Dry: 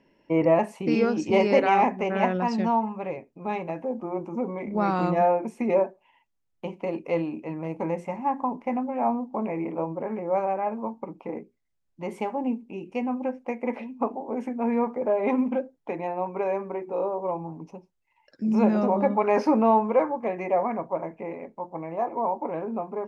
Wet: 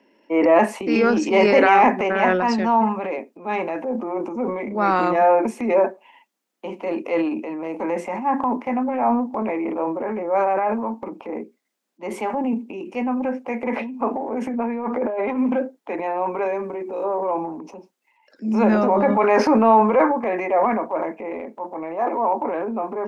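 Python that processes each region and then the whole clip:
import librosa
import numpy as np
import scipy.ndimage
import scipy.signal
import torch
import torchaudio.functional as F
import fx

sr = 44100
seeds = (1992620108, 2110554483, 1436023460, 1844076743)

y = fx.chain(x, sr, fx.lowpass(hz=5100.0, slope=12),
    fx.over_compress(threshold_db=-28.0, ratio=-0.5), at=(14.53, 15.37))
y = fx.chain(y, sr, fx.peak_eq(hz=1000.0, db=-7.0, octaves=2.7),
    fx.band_squash(depth_pct=70), at=(16.45, 17.04))
y = scipy.signal.sosfilt(scipy.signal.butter(8, 210.0, 'highpass', fs=sr, output='sos'), y)
y = fx.dynamic_eq(y, sr, hz=1600.0, q=1.3, threshold_db=-43.0, ratio=4.0, max_db=6)
y = fx.transient(y, sr, attack_db=-4, sustain_db=7)
y = y * librosa.db_to_amplitude(5.0)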